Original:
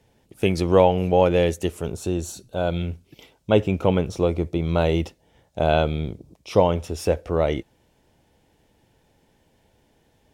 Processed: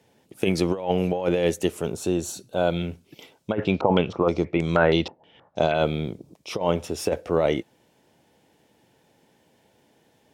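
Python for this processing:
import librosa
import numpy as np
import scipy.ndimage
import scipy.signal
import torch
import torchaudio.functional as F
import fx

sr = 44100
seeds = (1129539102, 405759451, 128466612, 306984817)

y = scipy.signal.sosfilt(scipy.signal.butter(2, 150.0, 'highpass', fs=sr, output='sos'), x)
y = fx.over_compress(y, sr, threshold_db=-20.0, ratio=-0.5)
y = fx.filter_held_lowpass(y, sr, hz=6.3, low_hz=870.0, high_hz=7700.0, at=(3.52, 5.73), fade=0.02)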